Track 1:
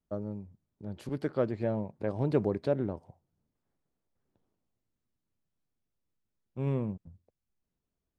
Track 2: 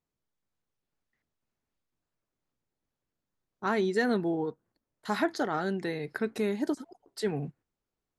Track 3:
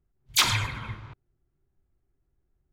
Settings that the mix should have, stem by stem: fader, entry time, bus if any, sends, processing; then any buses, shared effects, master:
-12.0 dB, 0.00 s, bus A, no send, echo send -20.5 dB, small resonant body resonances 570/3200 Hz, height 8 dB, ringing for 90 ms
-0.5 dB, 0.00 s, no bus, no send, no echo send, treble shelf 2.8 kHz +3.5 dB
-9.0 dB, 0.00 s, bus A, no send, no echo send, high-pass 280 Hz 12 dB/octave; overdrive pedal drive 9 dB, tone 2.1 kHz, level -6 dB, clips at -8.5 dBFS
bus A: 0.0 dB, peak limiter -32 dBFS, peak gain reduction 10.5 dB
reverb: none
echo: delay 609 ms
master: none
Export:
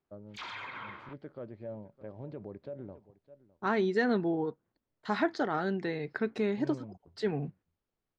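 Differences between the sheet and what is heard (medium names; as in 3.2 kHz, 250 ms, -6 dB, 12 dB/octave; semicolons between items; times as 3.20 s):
stem 3 -9.0 dB -> -1.0 dB; master: extra distance through air 170 m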